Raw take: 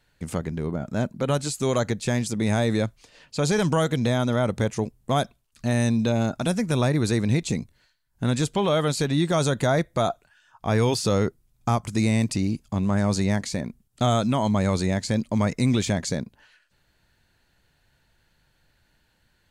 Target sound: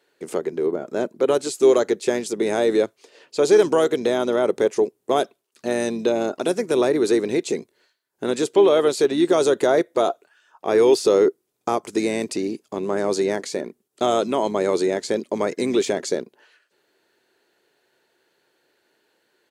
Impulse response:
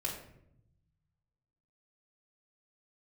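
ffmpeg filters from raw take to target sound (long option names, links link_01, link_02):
-filter_complex "[0:a]highpass=frequency=390:width_type=q:width=4.5,asplit=2[link_01][link_02];[link_02]asetrate=35002,aresample=44100,atempo=1.25992,volume=-16dB[link_03];[link_01][link_03]amix=inputs=2:normalize=0"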